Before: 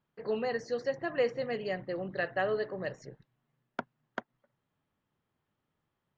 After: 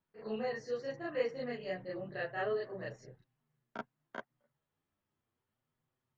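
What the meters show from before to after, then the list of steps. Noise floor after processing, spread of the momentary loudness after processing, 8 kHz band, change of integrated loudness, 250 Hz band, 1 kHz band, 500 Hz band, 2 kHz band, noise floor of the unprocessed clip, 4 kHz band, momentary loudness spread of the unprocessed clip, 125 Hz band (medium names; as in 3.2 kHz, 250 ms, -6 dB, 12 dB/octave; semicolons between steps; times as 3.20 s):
under -85 dBFS, 13 LU, no reading, -5.0 dB, -4.5 dB, -5.5 dB, -5.0 dB, -5.5 dB, -84 dBFS, -5.0 dB, 13 LU, -4.5 dB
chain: chorus voices 2, 0.34 Hz, delay 11 ms, depth 3.4 ms; reverse echo 33 ms -5 dB; trim -3.5 dB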